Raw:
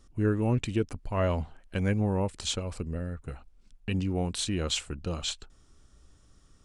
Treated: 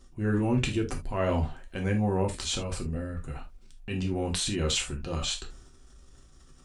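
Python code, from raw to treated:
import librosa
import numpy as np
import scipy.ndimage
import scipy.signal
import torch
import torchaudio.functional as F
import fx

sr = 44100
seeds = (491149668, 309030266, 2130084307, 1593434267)

y = fx.transient(x, sr, attack_db=-4, sustain_db=7)
y = fx.rev_gated(y, sr, seeds[0], gate_ms=100, shape='falling', drr_db=1.5)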